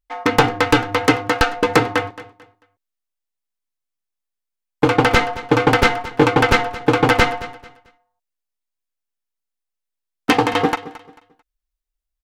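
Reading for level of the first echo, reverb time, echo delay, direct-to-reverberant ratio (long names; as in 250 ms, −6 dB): −17.0 dB, no reverb audible, 221 ms, no reverb audible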